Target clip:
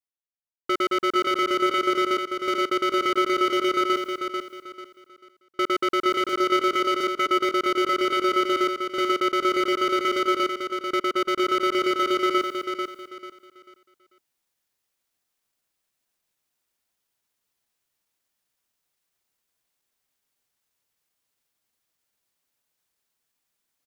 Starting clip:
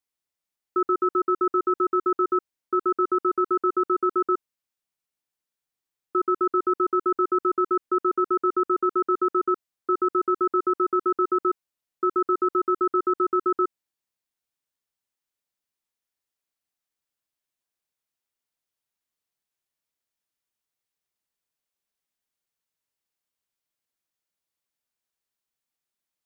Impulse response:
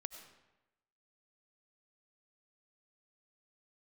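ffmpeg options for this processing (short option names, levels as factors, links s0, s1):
-af "asoftclip=type=hard:threshold=0.0531,areverse,acompressor=mode=upward:threshold=0.00501:ratio=2.5,areverse,agate=range=0.0224:threshold=0.00251:ratio=3:detection=peak,atempo=1.1,aecho=1:1:442|884|1326|1768:0.501|0.145|0.0421|0.0122,volume=1.88"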